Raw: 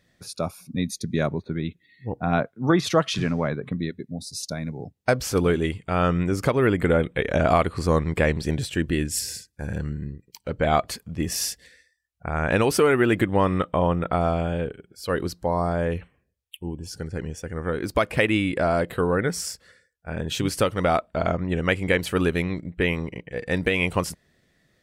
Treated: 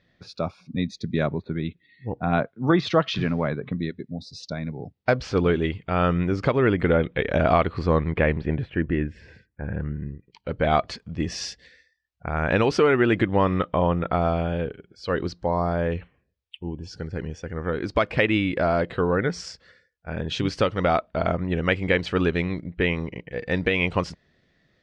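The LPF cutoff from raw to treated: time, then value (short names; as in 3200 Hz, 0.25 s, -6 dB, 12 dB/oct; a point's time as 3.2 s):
LPF 24 dB/oct
7.7 s 4500 Hz
8.68 s 2200 Hz
9.85 s 2200 Hz
10.69 s 5200 Hz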